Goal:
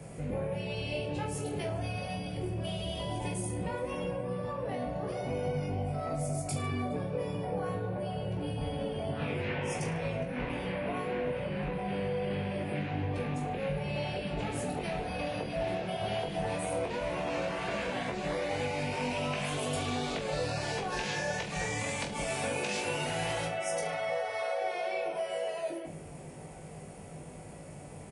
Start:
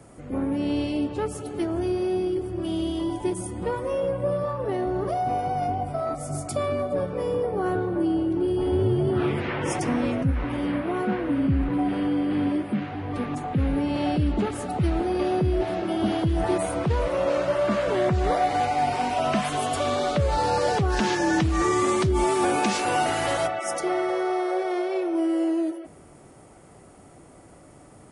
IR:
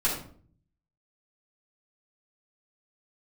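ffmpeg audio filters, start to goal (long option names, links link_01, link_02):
-af "afftfilt=real='re*lt(hypot(re,im),0.355)':imag='im*lt(hypot(re,im),0.355)':win_size=1024:overlap=0.75,equalizer=frequency=160:width_type=o:width=0.33:gain=9,equalizer=frequency=315:width_type=o:width=0.33:gain=-7,equalizer=frequency=500:width_type=o:width=0.33:gain=4,equalizer=frequency=1250:width_type=o:width=0.33:gain=-8,equalizer=frequency=2500:width_type=o:width=0.33:gain=6,acompressor=threshold=-33dB:ratio=6,aecho=1:1:20|44|72.8|107.4|148.8:0.631|0.398|0.251|0.158|0.1"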